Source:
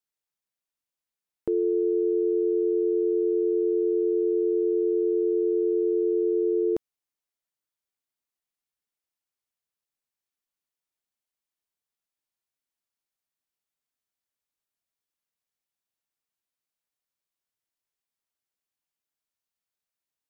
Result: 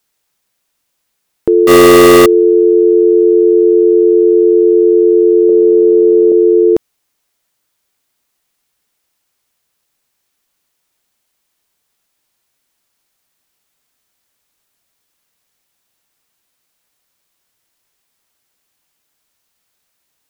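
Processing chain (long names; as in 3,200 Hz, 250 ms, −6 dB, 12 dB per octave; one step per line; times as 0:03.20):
0:01.67–0:02.26: log-companded quantiser 2 bits
0:05.49–0:06.32: parametric band 670 Hz +9.5 dB 2.8 octaves
boost into a limiter +23 dB
level −1 dB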